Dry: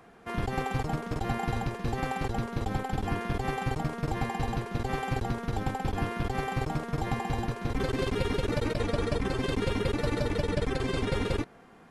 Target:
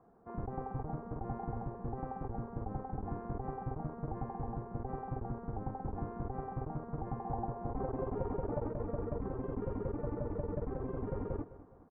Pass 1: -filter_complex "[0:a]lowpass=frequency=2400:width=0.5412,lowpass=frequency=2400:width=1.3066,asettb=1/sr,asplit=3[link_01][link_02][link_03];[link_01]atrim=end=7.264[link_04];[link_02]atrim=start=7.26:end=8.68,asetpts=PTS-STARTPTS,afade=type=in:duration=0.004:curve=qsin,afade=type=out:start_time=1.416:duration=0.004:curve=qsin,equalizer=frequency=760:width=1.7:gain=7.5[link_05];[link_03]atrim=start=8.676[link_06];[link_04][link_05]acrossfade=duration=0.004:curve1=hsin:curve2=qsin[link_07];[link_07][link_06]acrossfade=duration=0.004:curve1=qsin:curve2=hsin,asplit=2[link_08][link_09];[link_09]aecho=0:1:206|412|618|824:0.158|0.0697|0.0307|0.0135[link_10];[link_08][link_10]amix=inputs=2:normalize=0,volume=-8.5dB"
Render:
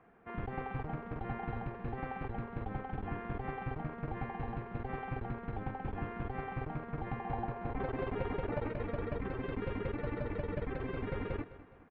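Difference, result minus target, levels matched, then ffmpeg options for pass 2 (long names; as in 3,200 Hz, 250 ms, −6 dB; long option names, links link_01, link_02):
2,000 Hz band +14.0 dB
-filter_complex "[0:a]lowpass=frequency=1100:width=0.5412,lowpass=frequency=1100:width=1.3066,asettb=1/sr,asplit=3[link_01][link_02][link_03];[link_01]atrim=end=7.264[link_04];[link_02]atrim=start=7.26:end=8.68,asetpts=PTS-STARTPTS,afade=type=in:duration=0.004:curve=qsin,afade=type=out:start_time=1.416:duration=0.004:curve=qsin,equalizer=frequency=760:width=1.7:gain=7.5[link_05];[link_03]atrim=start=8.676[link_06];[link_04][link_05]acrossfade=duration=0.004:curve1=hsin:curve2=qsin[link_07];[link_07][link_06]acrossfade=duration=0.004:curve1=qsin:curve2=hsin,asplit=2[link_08][link_09];[link_09]aecho=0:1:206|412|618|824:0.158|0.0697|0.0307|0.0135[link_10];[link_08][link_10]amix=inputs=2:normalize=0,volume=-8.5dB"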